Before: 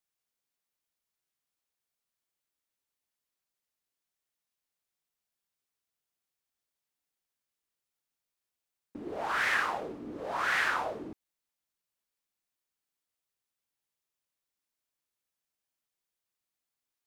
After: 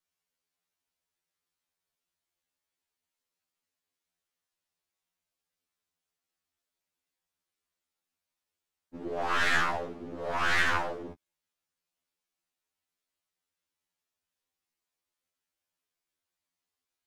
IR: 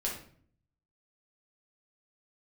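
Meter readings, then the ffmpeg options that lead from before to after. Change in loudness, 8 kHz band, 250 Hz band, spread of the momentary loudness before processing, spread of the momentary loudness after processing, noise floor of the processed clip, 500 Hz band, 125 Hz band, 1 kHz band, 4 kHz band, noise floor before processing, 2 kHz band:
+2.0 dB, +3.0 dB, +2.0 dB, 15 LU, 16 LU, under -85 dBFS, +3.0 dB, +9.0 dB, +1.5 dB, +4.5 dB, under -85 dBFS, +1.5 dB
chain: -af "highshelf=f=9.9k:g=-7.5,aeval=exprs='0.178*(cos(1*acos(clip(val(0)/0.178,-1,1)))-cos(1*PI/2))+0.0224*(cos(6*acos(clip(val(0)/0.178,-1,1)))-cos(6*PI/2))':c=same,afftfilt=real='re*2*eq(mod(b,4),0)':imag='im*2*eq(mod(b,4),0)':win_size=2048:overlap=0.75,volume=4dB"

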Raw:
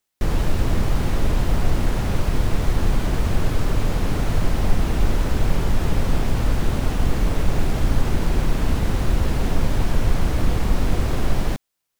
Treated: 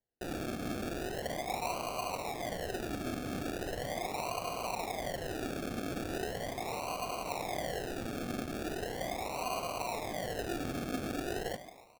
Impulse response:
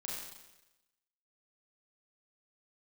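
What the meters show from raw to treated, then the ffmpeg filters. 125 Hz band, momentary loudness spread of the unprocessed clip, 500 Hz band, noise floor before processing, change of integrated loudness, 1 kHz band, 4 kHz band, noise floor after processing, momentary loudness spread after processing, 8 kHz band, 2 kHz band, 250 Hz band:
-23.0 dB, 1 LU, -7.0 dB, -78 dBFS, -13.5 dB, -6.0 dB, -8.5 dB, -47 dBFS, 2 LU, -7.5 dB, -8.5 dB, -12.5 dB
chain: -filter_complex "[0:a]asplit=3[a][b][c];[a]bandpass=f=730:t=q:w=8,volume=0dB[d];[b]bandpass=f=1.09k:t=q:w=8,volume=-6dB[e];[c]bandpass=f=2.44k:t=q:w=8,volume=-9dB[f];[d][e][f]amix=inputs=3:normalize=0,aecho=1:1:286:0.0631,asplit=2[g][h];[1:a]atrim=start_sample=2205,afade=t=out:st=0.41:d=0.01,atrim=end_sample=18522,asetrate=26901,aresample=44100[i];[h][i]afir=irnorm=-1:irlink=0,volume=-13dB[j];[g][j]amix=inputs=2:normalize=0,acrusher=samples=35:mix=1:aa=0.000001:lfo=1:lforange=21:lforate=0.39,volume=2dB"

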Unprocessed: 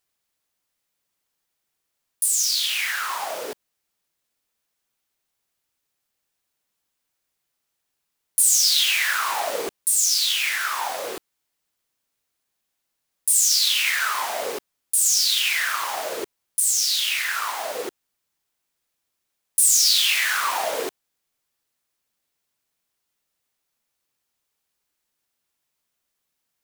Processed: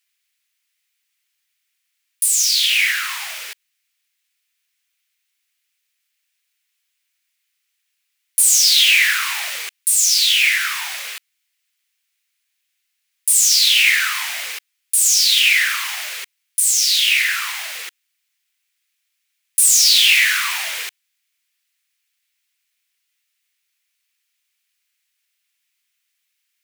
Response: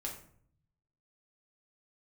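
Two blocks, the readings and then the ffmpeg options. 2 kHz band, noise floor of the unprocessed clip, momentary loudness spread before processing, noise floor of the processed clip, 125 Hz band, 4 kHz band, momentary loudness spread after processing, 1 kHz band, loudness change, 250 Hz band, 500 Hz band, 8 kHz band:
+8.0 dB, -79 dBFS, 15 LU, -74 dBFS, n/a, +6.5 dB, 17 LU, -5.0 dB, +5.5 dB, under -10 dB, under -15 dB, +4.5 dB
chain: -af "highpass=f=2.2k:t=q:w=2,acontrast=52,volume=-1.5dB"

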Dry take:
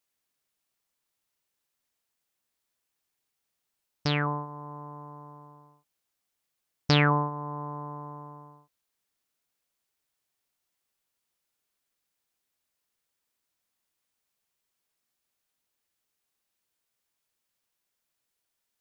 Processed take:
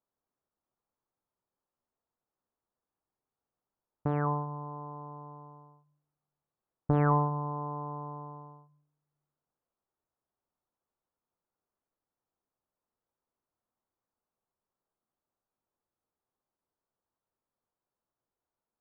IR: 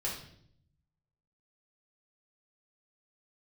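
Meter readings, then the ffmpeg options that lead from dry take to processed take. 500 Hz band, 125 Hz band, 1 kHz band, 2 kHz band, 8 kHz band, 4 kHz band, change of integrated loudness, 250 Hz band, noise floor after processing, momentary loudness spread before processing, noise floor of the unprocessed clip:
-1.0 dB, -1.5 dB, -1.0 dB, -13.5 dB, n/a, under -35 dB, -3.5 dB, -2.0 dB, under -85 dBFS, 22 LU, -83 dBFS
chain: -filter_complex "[0:a]bandreject=f=50:t=h:w=6,bandreject=f=100:t=h:w=6,bandreject=f=150:t=h:w=6,aeval=exprs='(mod(2.99*val(0)+1,2)-1)/2.99':c=same,asplit=2[a][b];[1:a]atrim=start_sample=2205[c];[b][c]afir=irnorm=-1:irlink=0,volume=-19dB[d];[a][d]amix=inputs=2:normalize=0,asoftclip=type=tanh:threshold=-14.5dB,lowpass=f=1.2k:w=0.5412,lowpass=f=1.2k:w=1.3066"

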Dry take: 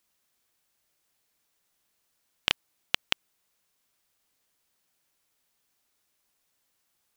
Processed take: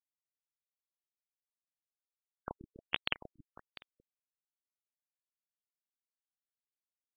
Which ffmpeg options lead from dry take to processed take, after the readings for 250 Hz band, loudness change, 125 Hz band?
-3.5 dB, -9.0 dB, -3.5 dB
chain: -af "aecho=1:1:130|279.5|451.4|649.1|876.5:0.631|0.398|0.251|0.158|0.1,aeval=exprs='sgn(val(0))*max(abs(val(0))-0.0316,0)':c=same,afftfilt=real='re*lt(b*sr/1024,330*pow(4800/330,0.5+0.5*sin(2*PI*1.4*pts/sr)))':imag='im*lt(b*sr/1024,330*pow(4800/330,0.5+0.5*sin(2*PI*1.4*pts/sr)))':win_size=1024:overlap=0.75,volume=-5dB"

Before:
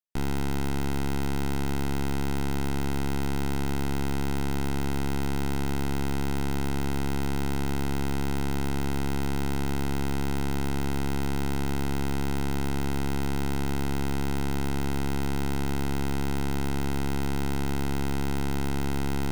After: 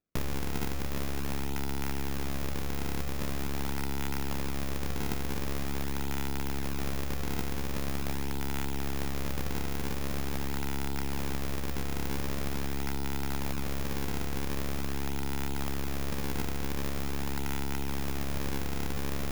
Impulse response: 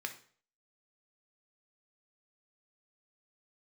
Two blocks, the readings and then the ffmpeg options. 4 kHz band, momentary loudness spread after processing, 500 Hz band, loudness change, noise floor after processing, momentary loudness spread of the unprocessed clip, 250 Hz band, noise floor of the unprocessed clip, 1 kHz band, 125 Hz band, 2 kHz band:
-2.0 dB, 1 LU, -5.0 dB, -4.5 dB, -31 dBFS, 0 LU, -7.0 dB, -26 dBFS, -5.0 dB, -6.0 dB, -3.0 dB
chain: -filter_complex "[0:a]acrossover=split=110|580[a][b][c];[a]acompressor=threshold=-31dB:ratio=4[d];[b]acompressor=threshold=-42dB:ratio=4[e];[c]acompressor=threshold=-43dB:ratio=4[f];[d][e][f]amix=inputs=3:normalize=0,acrusher=samples=42:mix=1:aa=0.000001:lfo=1:lforange=67.2:lforate=0.44,asplit=2[g][h];[h]aemphasis=mode=production:type=75fm[i];[1:a]atrim=start_sample=2205[j];[i][j]afir=irnorm=-1:irlink=0,volume=-4dB[k];[g][k]amix=inputs=2:normalize=0,volume=1.5dB"

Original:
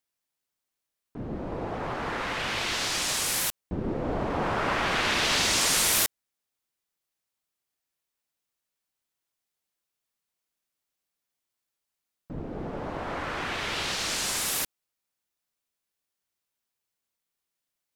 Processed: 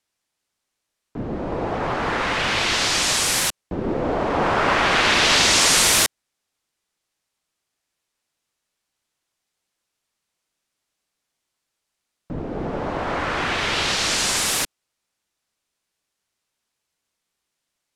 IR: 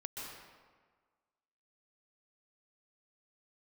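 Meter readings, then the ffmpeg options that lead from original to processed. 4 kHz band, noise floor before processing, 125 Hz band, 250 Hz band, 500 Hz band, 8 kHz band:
+8.5 dB, under -85 dBFS, +6.0 dB, +7.0 dB, +8.5 dB, +7.0 dB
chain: -filter_complex "[0:a]lowpass=9.6k,acrossover=split=280|2900[a][b][c];[a]alimiter=level_in=7.5dB:limit=-24dB:level=0:latency=1:release=441,volume=-7.5dB[d];[d][b][c]amix=inputs=3:normalize=0,volume=8.5dB"

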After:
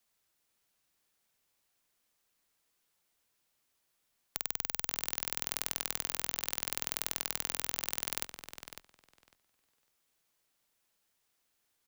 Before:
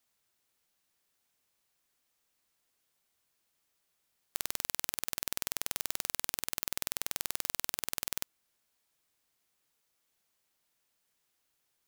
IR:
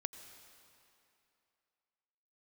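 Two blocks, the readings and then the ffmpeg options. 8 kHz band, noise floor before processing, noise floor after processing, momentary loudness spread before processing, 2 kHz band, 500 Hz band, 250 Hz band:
0.0 dB, -79 dBFS, -78 dBFS, 3 LU, +0.5 dB, +1.0 dB, +1.0 dB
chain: -filter_complex "[0:a]afreqshift=-25,asplit=2[a][b];[b]adelay=552,lowpass=f=4.5k:p=1,volume=-7dB,asplit=2[c][d];[d]adelay=552,lowpass=f=4.5k:p=1,volume=0.16,asplit=2[e][f];[f]adelay=552,lowpass=f=4.5k:p=1,volume=0.16[g];[a][c][e][g]amix=inputs=4:normalize=0"

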